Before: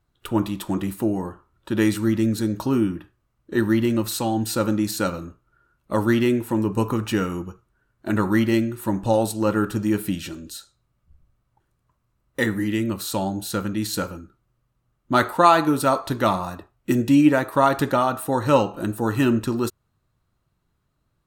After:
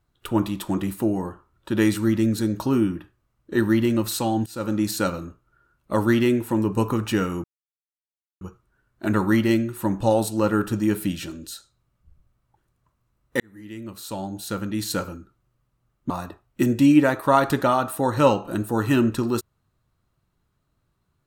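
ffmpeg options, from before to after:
-filter_complex "[0:a]asplit=5[s0][s1][s2][s3][s4];[s0]atrim=end=4.46,asetpts=PTS-STARTPTS,afade=t=out:st=4.456:d=0.004:c=hsin:silence=0.0707946[s5];[s1]atrim=start=4.46:end=7.44,asetpts=PTS-STARTPTS,afade=t=in:d=0.36:silence=0.0707946,afade=t=out:st=2.976:d=0.004:c=hsin,apad=pad_dur=0.97[s6];[s2]atrim=start=7.44:end=12.43,asetpts=PTS-STARTPTS,afade=t=in:d=0.004:c=hsin,afade=t=out:st=4.986:d=0.004:c=hsin[s7];[s3]atrim=start=12.43:end=15.132,asetpts=PTS-STARTPTS,afade=t=in:d=1.62[s8];[s4]atrim=start=16.388[s9];[s5][s6][s7][s8]concat=n=4:v=0:a=1[s10];[s10][s9]acrossfade=d=0.004:c1=hsin:c2=hsin"

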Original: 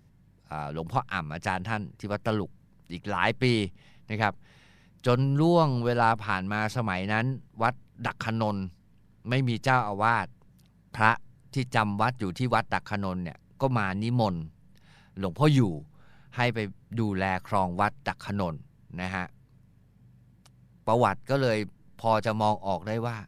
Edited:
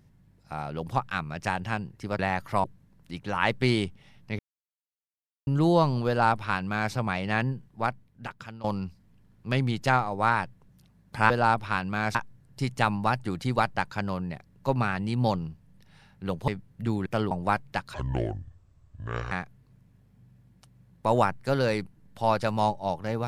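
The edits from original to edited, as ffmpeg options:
-filter_complex "[0:a]asplit=13[s0][s1][s2][s3][s4][s5][s6][s7][s8][s9][s10][s11][s12];[s0]atrim=end=2.192[s13];[s1]atrim=start=17.178:end=17.632[s14];[s2]atrim=start=2.438:end=4.19,asetpts=PTS-STARTPTS,afade=t=out:st=1.748:d=0.004:c=hsin[s15];[s3]atrim=start=4.19:end=5.27,asetpts=PTS-STARTPTS,volume=0[s16];[s4]atrim=start=5.27:end=8.44,asetpts=PTS-STARTPTS,afade=t=in:d=0.004:c=hsin,afade=t=out:st=2.08:d=1.09:silence=0.125893[s17];[s5]atrim=start=8.44:end=11.102,asetpts=PTS-STARTPTS,afade=t=in:d=0.004:c=hsin:silence=0.125893[s18];[s6]atrim=start=5.878:end=6.732[s19];[s7]atrim=start=11.098:end=15.432[s20];[s8]atrim=start=16.598:end=17.182[s21];[s9]atrim=start=2.188:end=2.442[s22];[s10]atrim=start=17.628:end=18.264[s23];[s11]atrim=start=18.26:end=19.14,asetpts=PTS-STARTPTS,asetrate=28224,aresample=44100[s24];[s12]atrim=start=19.136[s25];[s13][s14]acrossfade=d=0.004:c1=hsin:c2=hsin[s26];[s15][s16][s17][s18]concat=n=4:v=0:a=1[s27];[s26][s27]acrossfade=d=0.004:c1=hsin:c2=hsin[s28];[s28][s19]acrossfade=d=0.004:c1=hsin:c2=hsin[s29];[s29][s20]acrossfade=d=0.004:c1=hsin:c2=hsin[s30];[s30][s21]acrossfade=d=0.004:c1=hsin:c2=hsin[s31];[s31][s22]acrossfade=d=0.004:c1=hsin:c2=hsin[s32];[s32][s23]acrossfade=d=0.004:c1=hsin:c2=hsin[s33];[s33][s24]acrossfade=d=0.004:c1=hsin:c2=hsin[s34];[s34][s25]acrossfade=d=0.004:c1=hsin:c2=hsin"

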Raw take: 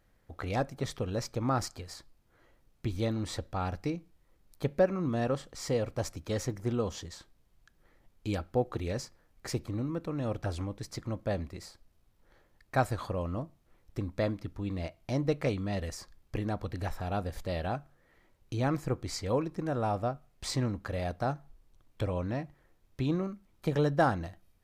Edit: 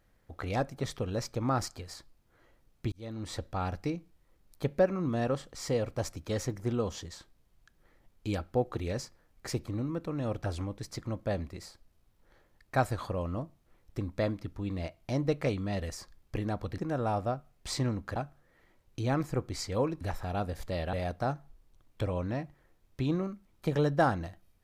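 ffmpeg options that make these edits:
-filter_complex "[0:a]asplit=6[s0][s1][s2][s3][s4][s5];[s0]atrim=end=2.92,asetpts=PTS-STARTPTS,afade=t=out:st=2.916:d=0.004:c=hsin[s6];[s1]atrim=start=2.92:end=16.782,asetpts=PTS-STARTPTS,afade=t=in:d=0.5[s7];[s2]atrim=start=19.548:end=20.932[s8];[s3]atrim=start=17.698:end=19.552[s9];[s4]atrim=start=16.778:end=17.702[s10];[s5]atrim=start=20.928[s11];[s6][s7]concat=n=2:v=0:a=1[s12];[s12][s8]acrossfade=d=0.004:c1=hsin:c2=hsin[s13];[s13][s9]acrossfade=d=0.004:c1=hsin:c2=hsin[s14];[s14][s10]acrossfade=d=0.004:c1=hsin:c2=hsin[s15];[s15][s11]acrossfade=d=0.004:c1=hsin:c2=hsin"

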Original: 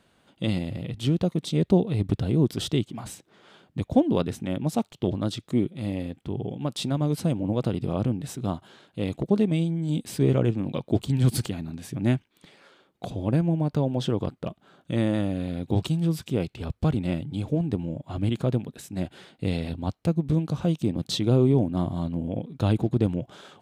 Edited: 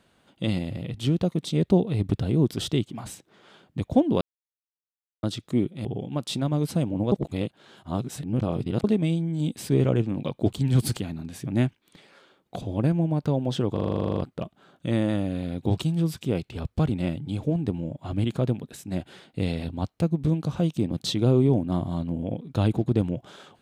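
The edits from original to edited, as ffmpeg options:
-filter_complex "[0:a]asplit=17[s0][s1][s2][s3][s4][s5][s6][s7][s8][s9][s10][s11][s12][s13][s14][s15][s16];[s0]atrim=end=4.21,asetpts=PTS-STARTPTS,afade=t=out:st=4.206:d=0.004:c=hsin[s17];[s1]atrim=start=4.21:end=5.23,asetpts=PTS-STARTPTS,volume=0[s18];[s2]atrim=start=5.23:end=5.852,asetpts=PTS-STARTPTS,afade=t=in:d=0.004:c=hsin[s19];[s3]atrim=start=6.338:end=7.612[s20];[s4]atrim=start=7.608:end=9.332,asetpts=PTS-STARTPTS,areverse[s21];[s5]atrim=start=9.328:end=14.262[s22];[s6]atrim=start=14.218:end=14.262[s23];[s7]atrim=start=14.218:end=14.262[s24];[s8]atrim=start=14.218:end=14.262[s25];[s9]atrim=start=14.218:end=14.262[s26];[s10]atrim=start=14.218:end=14.262[s27];[s11]atrim=start=14.218:end=14.262[s28];[s12]atrim=start=14.218:end=14.262[s29];[s13]atrim=start=14.218:end=14.262[s30];[s14]atrim=start=14.218:end=14.262[s31];[s15]atrim=start=14.218:end=14.262[s32];[s16]atrim=start=14.218[s33];[s17][s18][s19]concat=n=3:v=0:a=1[s34];[s34][s20]acrossfade=d=0.004:c1=hsin:c2=hsin[s35];[s35][s21]acrossfade=d=0.004:c1=hsin:c2=hsin[s36];[s36][s22]acrossfade=d=0.004:c1=hsin:c2=hsin[s37];[s37][s23]acrossfade=d=0.004:c1=hsin:c2=hsin[s38];[s38][s24]acrossfade=d=0.004:c1=hsin:c2=hsin[s39];[s39][s25]acrossfade=d=0.004:c1=hsin:c2=hsin[s40];[s40][s26]acrossfade=d=0.004:c1=hsin:c2=hsin[s41];[s41][s27]acrossfade=d=0.004:c1=hsin:c2=hsin[s42];[s42][s28]acrossfade=d=0.004:c1=hsin:c2=hsin[s43];[s43][s29]acrossfade=d=0.004:c1=hsin:c2=hsin[s44];[s44][s30]acrossfade=d=0.004:c1=hsin:c2=hsin[s45];[s45][s31]acrossfade=d=0.004:c1=hsin:c2=hsin[s46];[s46][s32]acrossfade=d=0.004:c1=hsin:c2=hsin[s47];[s47][s33]acrossfade=d=0.004:c1=hsin:c2=hsin"

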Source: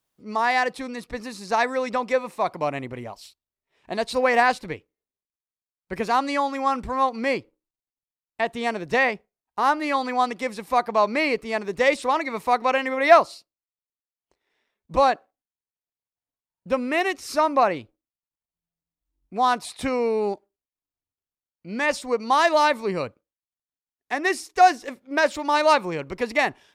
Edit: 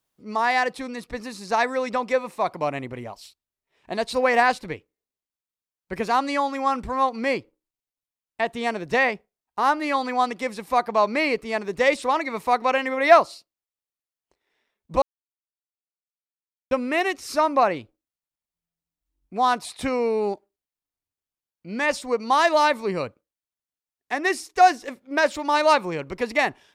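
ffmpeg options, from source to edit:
-filter_complex "[0:a]asplit=3[s0][s1][s2];[s0]atrim=end=15.02,asetpts=PTS-STARTPTS,afade=t=out:st=15.016:d=0.004:c=hsin[s3];[s1]atrim=start=15.02:end=16.71,asetpts=PTS-STARTPTS,volume=0[s4];[s2]atrim=start=16.71,asetpts=PTS-STARTPTS,afade=t=in:d=0.004:c=hsin[s5];[s3][s4][s5]concat=n=3:v=0:a=1"

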